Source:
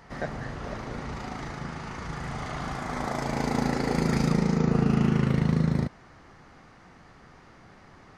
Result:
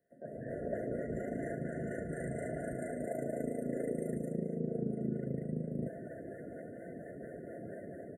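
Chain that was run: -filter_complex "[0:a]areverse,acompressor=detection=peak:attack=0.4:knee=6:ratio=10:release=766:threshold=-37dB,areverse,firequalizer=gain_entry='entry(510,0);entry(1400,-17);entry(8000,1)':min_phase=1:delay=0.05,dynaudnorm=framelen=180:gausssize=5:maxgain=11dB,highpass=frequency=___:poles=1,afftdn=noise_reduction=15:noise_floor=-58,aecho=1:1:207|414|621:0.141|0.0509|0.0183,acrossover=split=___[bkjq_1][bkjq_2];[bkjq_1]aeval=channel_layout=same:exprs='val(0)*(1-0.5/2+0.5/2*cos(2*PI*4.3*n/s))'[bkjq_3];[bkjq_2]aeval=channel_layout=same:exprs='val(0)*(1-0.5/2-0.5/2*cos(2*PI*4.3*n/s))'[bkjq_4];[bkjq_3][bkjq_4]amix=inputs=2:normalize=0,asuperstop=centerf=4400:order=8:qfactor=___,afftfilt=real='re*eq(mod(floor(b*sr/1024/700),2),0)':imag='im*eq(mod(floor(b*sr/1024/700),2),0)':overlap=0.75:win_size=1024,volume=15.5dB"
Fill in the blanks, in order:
1400, 420, 0.64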